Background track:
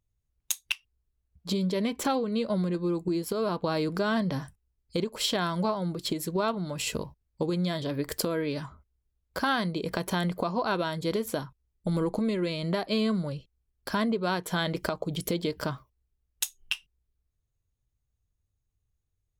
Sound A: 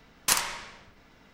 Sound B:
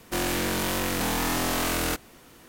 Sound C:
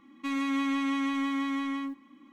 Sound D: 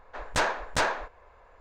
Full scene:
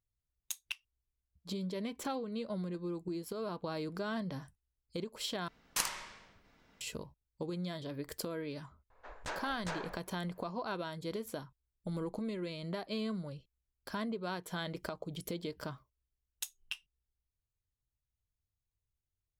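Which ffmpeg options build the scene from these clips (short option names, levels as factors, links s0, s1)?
-filter_complex "[0:a]volume=0.299[s0];[4:a]alimiter=limit=0.0708:level=0:latency=1:release=71[s1];[s0]asplit=2[s2][s3];[s2]atrim=end=5.484[s4];[1:a]atrim=end=1.33,asetpts=PTS-STARTPTS,volume=0.335[s5];[s3]atrim=start=6.806[s6];[s1]atrim=end=1.6,asetpts=PTS-STARTPTS,volume=0.266,afade=t=in:d=0.004:c=hsin,afade=t=out:st=1.596:d=0.004:c=hsin,adelay=392490S[s7];[s4][s5]acrossfade=d=0.004:c1=hsin:c2=hsin[s8];[s8][s6]acrossfade=d=0.004:c1=hsin:c2=hsin[s9];[s9][s7]amix=inputs=2:normalize=0"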